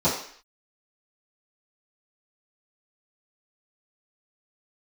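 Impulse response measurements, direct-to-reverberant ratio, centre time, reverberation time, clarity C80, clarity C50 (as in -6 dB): -14.0 dB, 36 ms, 0.55 s, 9.0 dB, 5.0 dB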